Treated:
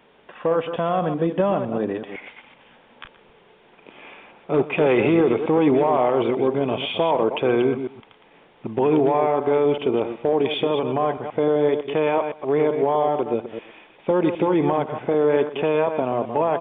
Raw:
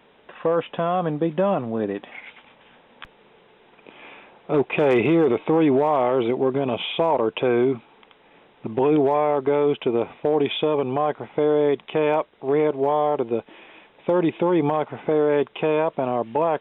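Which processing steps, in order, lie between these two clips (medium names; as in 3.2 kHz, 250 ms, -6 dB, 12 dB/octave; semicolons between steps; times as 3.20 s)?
chunks repeated in reverse 127 ms, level -8 dB; on a send: delay 122 ms -17 dB; on the sum: resampled via 8 kHz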